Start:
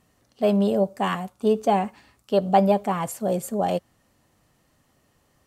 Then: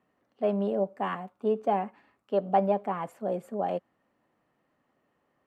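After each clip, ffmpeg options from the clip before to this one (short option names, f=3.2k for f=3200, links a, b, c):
-filter_complex "[0:a]acrossover=split=180 2600:gain=0.141 1 0.1[a][b][c];[a][b][c]amix=inputs=3:normalize=0,volume=-5.5dB"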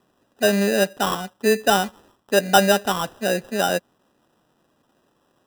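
-af "acrusher=samples=20:mix=1:aa=0.000001,volume=8.5dB"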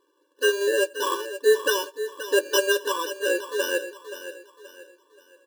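-filter_complex "[0:a]asplit=2[a][b];[b]adelay=12,volume=-12dB[c];[a][c]amix=inputs=2:normalize=0,aecho=1:1:527|1054|1581|2108:0.251|0.0929|0.0344|0.0127,afftfilt=real='re*eq(mod(floor(b*sr/1024/300),2),1)':imag='im*eq(mod(floor(b*sr/1024/300),2),1)':win_size=1024:overlap=0.75"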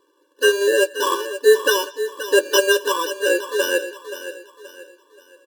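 -filter_complex "[0:a]acrossover=split=770|8000[a][b][c];[b]aecho=1:1:189:0.0794[d];[c]asoftclip=type=hard:threshold=-26.5dB[e];[a][d][e]amix=inputs=3:normalize=0,volume=5.5dB" -ar 48000 -c:a aac -b:a 96k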